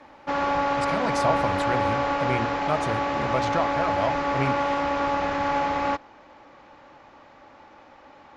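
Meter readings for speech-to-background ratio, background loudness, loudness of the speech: −4.5 dB, −25.5 LKFS, −30.0 LKFS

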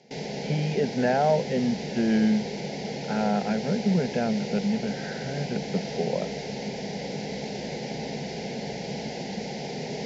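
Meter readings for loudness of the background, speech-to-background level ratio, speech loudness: −33.5 LKFS, 6.5 dB, −27.0 LKFS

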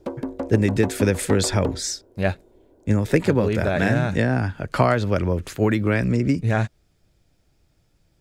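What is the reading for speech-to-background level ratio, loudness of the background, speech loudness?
9.5 dB, −31.5 LKFS, −22.0 LKFS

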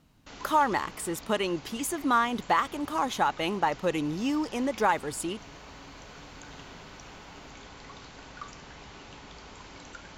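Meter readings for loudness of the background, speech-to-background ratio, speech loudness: −46.5 LKFS, 18.0 dB, −28.5 LKFS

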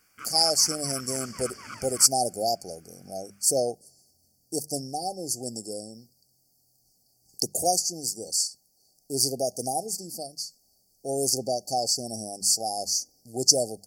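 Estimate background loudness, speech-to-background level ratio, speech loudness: −43.5 LKFS, 17.5 dB, −26.0 LKFS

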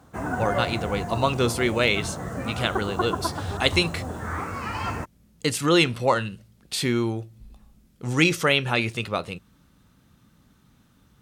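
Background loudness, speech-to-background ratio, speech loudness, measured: −31.0 LKFS, 6.5 dB, −24.5 LKFS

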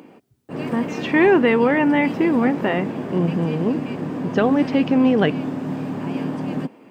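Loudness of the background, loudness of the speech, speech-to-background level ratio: −27.5 LKFS, −19.5 LKFS, 8.0 dB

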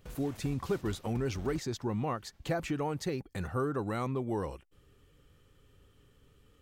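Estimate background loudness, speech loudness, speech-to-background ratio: −50.0 LKFS, −35.0 LKFS, 15.0 dB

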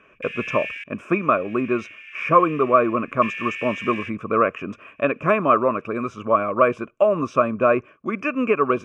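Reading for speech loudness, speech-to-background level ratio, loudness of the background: −21.5 LKFS, 12.0 dB, −33.5 LKFS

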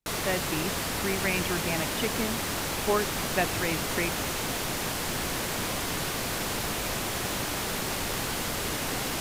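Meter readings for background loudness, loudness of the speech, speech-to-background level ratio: −29.5 LKFS, −32.0 LKFS, −2.5 dB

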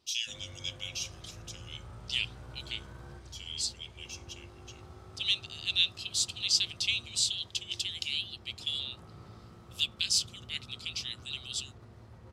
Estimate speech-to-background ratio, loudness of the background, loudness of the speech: 19.0 dB, −51.0 LKFS, −32.0 LKFS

